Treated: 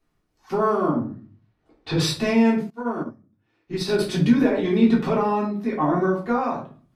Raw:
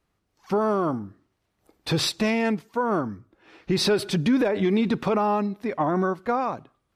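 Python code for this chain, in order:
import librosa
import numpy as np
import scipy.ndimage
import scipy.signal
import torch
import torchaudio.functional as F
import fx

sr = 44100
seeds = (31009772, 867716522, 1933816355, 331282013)

y = fx.lowpass(x, sr, hz=3800.0, slope=12, at=(0.88, 2.0))
y = fx.room_shoebox(y, sr, seeds[0], volume_m3=240.0, walls='furnished', distance_m=3.4)
y = fx.upward_expand(y, sr, threshold_db=-24.0, expansion=2.5, at=(2.7, 3.99))
y = y * 10.0 ** (-5.5 / 20.0)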